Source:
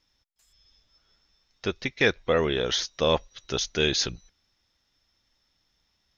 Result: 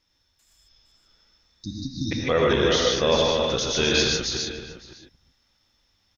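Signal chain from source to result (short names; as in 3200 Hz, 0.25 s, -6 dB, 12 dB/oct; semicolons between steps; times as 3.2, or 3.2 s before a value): reverse delay 0.23 s, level -3 dB; spectral repair 1.45–2.09, 330–3600 Hz before; outdoor echo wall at 96 m, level -13 dB; non-linear reverb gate 0.17 s rising, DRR 0 dB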